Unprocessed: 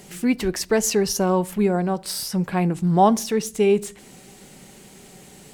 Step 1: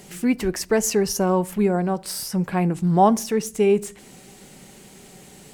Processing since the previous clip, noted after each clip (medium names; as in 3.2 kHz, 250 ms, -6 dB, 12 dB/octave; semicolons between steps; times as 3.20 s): dynamic bell 3.8 kHz, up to -6 dB, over -46 dBFS, Q 1.9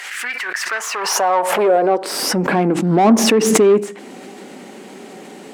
overdrive pedal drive 23 dB, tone 1.1 kHz, clips at -5.5 dBFS; high-pass sweep 1.7 kHz -> 250 Hz, 0.52–2.43 s; swell ahead of each attack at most 33 dB/s; trim -1.5 dB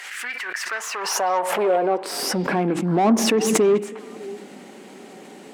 repeats whose band climbs or falls 201 ms, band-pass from 2.7 kHz, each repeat -1.4 oct, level -12 dB; trim -5.5 dB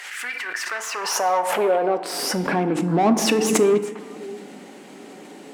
FDN reverb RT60 1 s, low-frequency decay 1.3×, high-frequency decay 0.6×, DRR 10 dB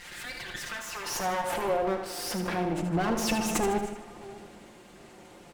comb filter that takes the minimum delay 5.7 ms; on a send: feedback delay 77 ms, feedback 47%, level -8.5 dB; on the sum: trim -8 dB